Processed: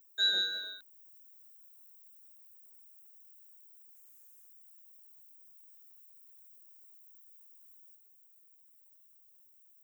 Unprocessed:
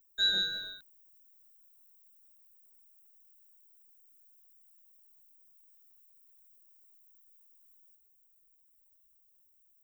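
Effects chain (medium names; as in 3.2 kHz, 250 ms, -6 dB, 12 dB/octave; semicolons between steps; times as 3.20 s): 3.94–4.47 s: spectral peaks clipped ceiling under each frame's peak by 16 dB; Chebyshev high-pass 390 Hz, order 2; in parallel at -0.5 dB: compression, threshold -57 dBFS, peak gain reduction 28.5 dB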